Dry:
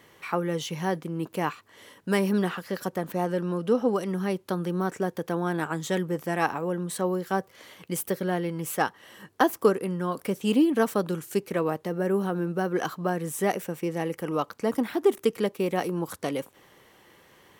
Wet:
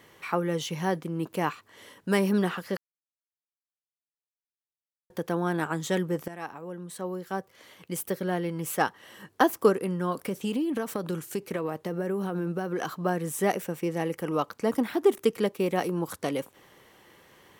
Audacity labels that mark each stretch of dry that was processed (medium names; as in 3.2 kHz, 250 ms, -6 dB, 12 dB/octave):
2.770000	5.100000	mute
6.280000	8.800000	fade in, from -14.5 dB
10.140000	13.040000	compression, threshold -25 dBFS